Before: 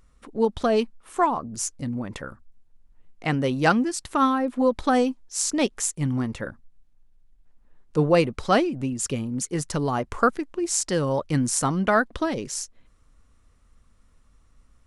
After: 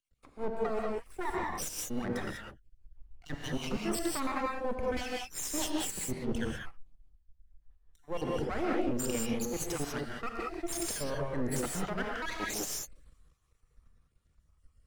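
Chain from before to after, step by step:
time-frequency cells dropped at random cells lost 56%
reversed playback
downward compressor 12 to 1, threshold −32 dBFS, peak gain reduction 18.5 dB
reversed playback
half-wave rectification
brickwall limiter −30 dBFS, peak gain reduction 9 dB
reverb whose tail is shaped and stops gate 220 ms rising, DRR −2 dB
multiband upward and downward expander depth 40%
level +6 dB

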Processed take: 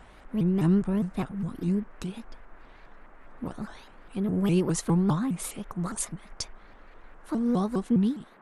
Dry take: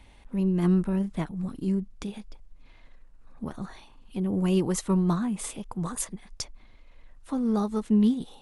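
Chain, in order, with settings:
fade-out on the ending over 0.55 s
noise in a band 160–1,700 Hz −56 dBFS
pitch modulation by a square or saw wave saw up 4.9 Hz, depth 250 cents

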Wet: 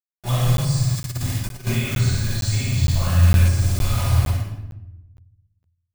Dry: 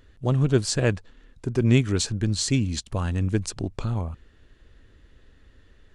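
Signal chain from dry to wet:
downward expander −51 dBFS
guitar amp tone stack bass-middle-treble 10-0-10
brickwall limiter −24 dBFS, peak gain reduction 9.5 dB
0:00.44–0:00.95: healed spectral selection 200–3,300 Hz
flutter between parallel walls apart 9.9 metres, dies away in 1.2 s
bit reduction 7 bits
rectangular room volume 350 cubic metres, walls mixed, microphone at 7.4 metres
0:00.95–0:01.67: compressor whose output falls as the input rises −23 dBFS, ratio −0.5
notch comb filter 460 Hz
de-essing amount 60%
high-shelf EQ 6,800 Hz +7.5 dB
regular buffer underruns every 0.46 s, samples 512, zero, from 0:00.57

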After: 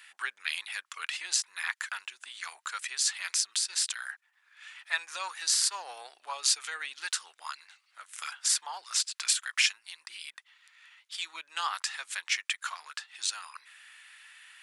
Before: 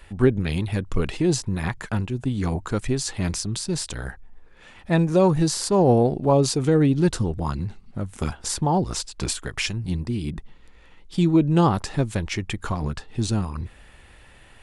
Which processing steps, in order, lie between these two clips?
high-pass filter 1,400 Hz 24 dB per octave
level +2 dB

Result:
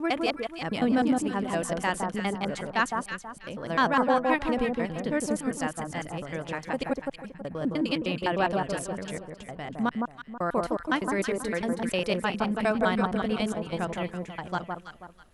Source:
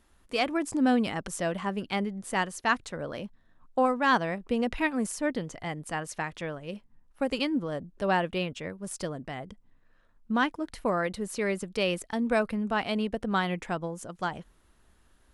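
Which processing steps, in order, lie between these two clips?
slices reordered back to front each 102 ms, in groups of 6
delay that swaps between a low-pass and a high-pass 162 ms, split 1,300 Hz, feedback 54%, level −2.5 dB

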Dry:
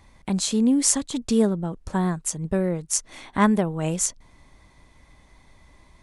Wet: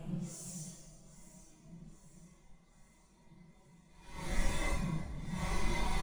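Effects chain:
mu-law and A-law mismatch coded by mu
low-shelf EQ 110 Hz −4 dB
comb filter 5.3 ms, depth 85%
in parallel at −1 dB: brickwall limiter −14.5 dBFS, peak gain reduction 11.5 dB
on the sum: hard clipping −17 dBFS, distortion −7 dB
echo with a time of its own for lows and highs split 520 Hz, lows 403 ms, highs 203 ms, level −14 dB
gate with flip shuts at −29 dBFS, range −32 dB
on a send at −3 dB: convolution reverb RT60 0.50 s, pre-delay 11 ms
on the sum: extreme stretch with random phases 4×, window 0.05 s, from 0:03.92
level +3 dB

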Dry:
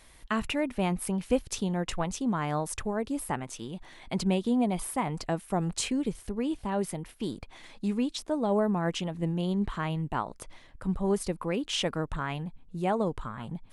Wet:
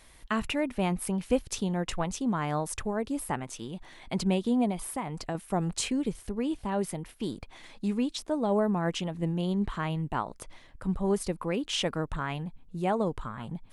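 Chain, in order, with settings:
0:04.71–0:05.35: downward compressor 2 to 1, threshold −33 dBFS, peak gain reduction 5.5 dB

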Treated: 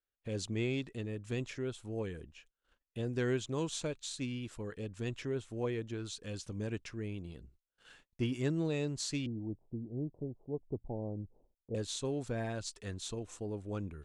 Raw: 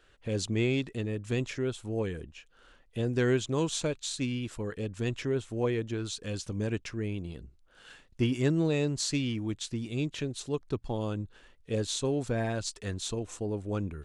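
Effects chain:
0:09.26–0:11.75: Butterworth low-pass 830 Hz 48 dB per octave
noise gate −55 dBFS, range −28 dB
level −6.5 dB

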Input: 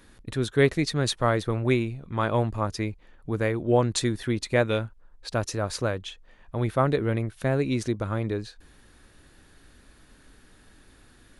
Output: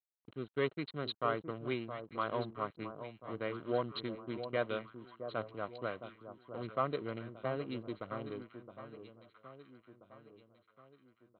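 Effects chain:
adaptive Wiener filter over 41 samples
high-pass filter 110 Hz 24 dB per octave
leveller curve on the samples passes 1
low-shelf EQ 390 Hz −7 dB
notch comb filter 870 Hz
dead-zone distortion −53 dBFS
Chebyshev low-pass with heavy ripple 4,200 Hz, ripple 6 dB
delay that swaps between a low-pass and a high-pass 666 ms, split 1,100 Hz, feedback 64%, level −9 dB
level −7 dB

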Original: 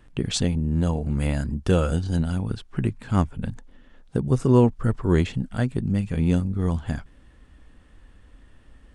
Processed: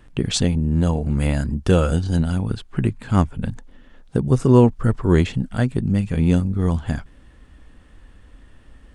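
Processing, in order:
0:02.46–0:03.09: notch filter 5,600 Hz, Q 13
level +4 dB

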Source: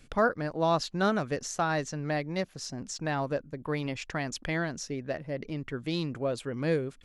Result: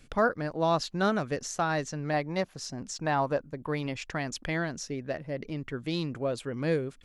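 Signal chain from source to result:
0:02.13–0:03.68: dynamic equaliser 920 Hz, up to +7 dB, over −46 dBFS, Q 1.3

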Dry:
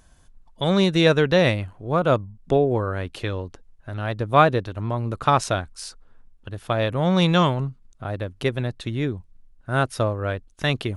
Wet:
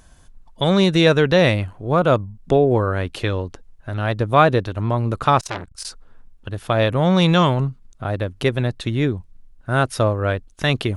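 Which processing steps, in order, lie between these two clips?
in parallel at +0.5 dB: brickwall limiter −14 dBFS, peak gain reduction 11.5 dB
0:05.40–0:05.85: on the sum: saturating transformer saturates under 2,300 Hz
level −1 dB

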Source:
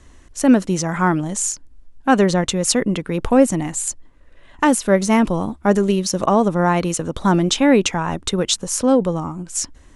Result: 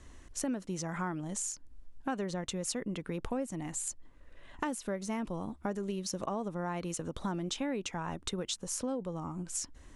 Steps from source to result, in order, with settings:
downward compressor 4 to 1, threshold −29 dBFS, peak gain reduction 18 dB
level −6 dB

